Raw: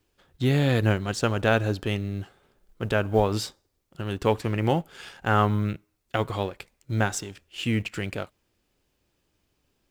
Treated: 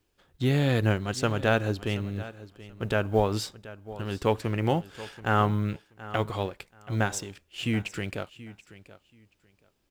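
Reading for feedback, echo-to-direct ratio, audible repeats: 19%, -17.0 dB, 2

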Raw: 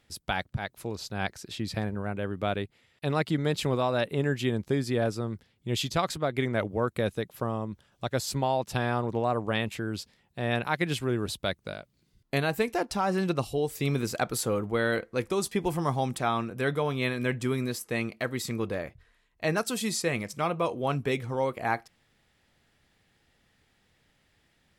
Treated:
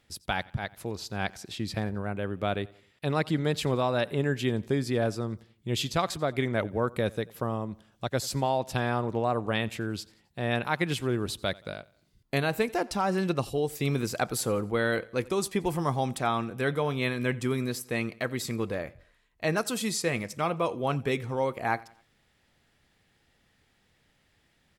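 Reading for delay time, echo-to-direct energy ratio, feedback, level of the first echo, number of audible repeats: 88 ms, -22.0 dB, 45%, -23.0 dB, 2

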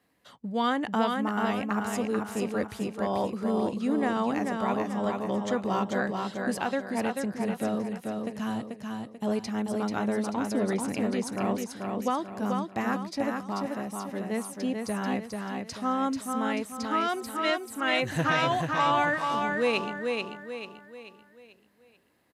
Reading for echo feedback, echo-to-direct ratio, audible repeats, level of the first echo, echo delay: 41%, -3.0 dB, 5, -4.0 dB, 0.438 s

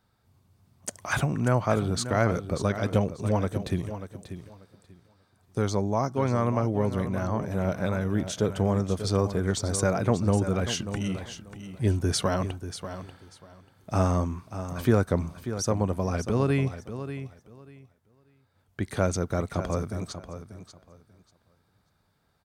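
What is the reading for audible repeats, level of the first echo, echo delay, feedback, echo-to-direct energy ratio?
2, -11.0 dB, 0.589 s, 20%, -11.0 dB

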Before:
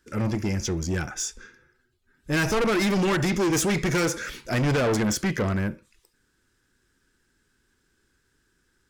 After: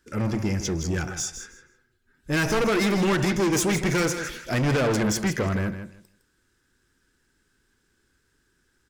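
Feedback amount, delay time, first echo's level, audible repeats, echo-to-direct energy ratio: 18%, 0.159 s, -10.0 dB, 2, -10.0 dB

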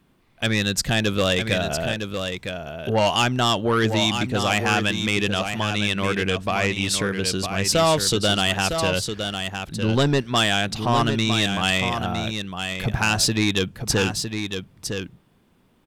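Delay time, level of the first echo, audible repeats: 0.958 s, -7.0 dB, 1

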